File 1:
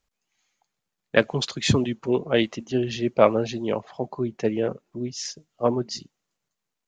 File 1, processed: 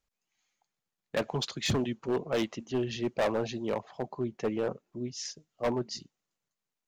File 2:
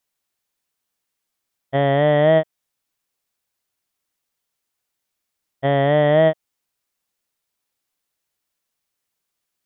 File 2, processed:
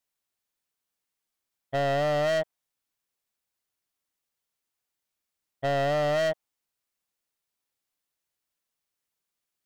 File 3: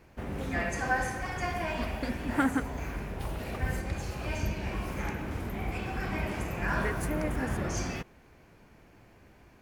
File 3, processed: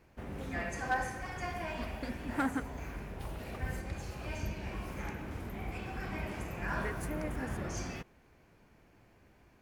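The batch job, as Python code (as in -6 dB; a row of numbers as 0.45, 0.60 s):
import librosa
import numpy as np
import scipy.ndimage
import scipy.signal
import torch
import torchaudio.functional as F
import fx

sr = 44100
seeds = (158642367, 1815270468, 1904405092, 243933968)

y = fx.dynamic_eq(x, sr, hz=880.0, q=1.2, threshold_db=-32.0, ratio=4.0, max_db=5)
y = np.clip(10.0 ** (17.5 / 20.0) * y, -1.0, 1.0) / 10.0 ** (17.5 / 20.0)
y = F.gain(torch.from_numpy(y), -6.0).numpy()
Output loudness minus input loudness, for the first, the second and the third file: -8.0, -9.5, -5.5 LU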